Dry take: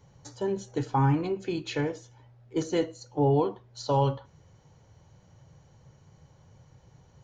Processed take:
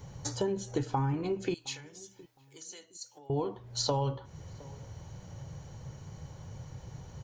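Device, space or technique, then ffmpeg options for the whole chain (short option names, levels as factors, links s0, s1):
ASMR close-microphone chain: -filter_complex "[0:a]lowshelf=f=140:g=4.5,acompressor=threshold=0.0141:ratio=6,highshelf=f=6500:g=5.5,asettb=1/sr,asplit=3[s0][s1][s2];[s0]atrim=end=1.544[s3];[s1]atrim=start=1.54:end=3.3,asetpts=PTS-STARTPTS,afade=t=in:d=0.004:c=qsin,afade=t=out:st=1.756:d=0.004:c=qsin,aderivative[s4];[s2]atrim=start=3.296[s5];[s3][s4]acrossfade=d=0.004:c1=hsin:c2=qsin[s6];[s6][s5]acrossfade=d=0.004:c1=qsin:c2=hsin,asplit=2[s7][s8];[s8]adelay=714,lowpass=f=870:p=1,volume=0.0891,asplit=2[s9][s10];[s10]adelay=714,lowpass=f=870:p=1,volume=0.31[s11];[s7][s9][s11]amix=inputs=3:normalize=0,volume=2.51"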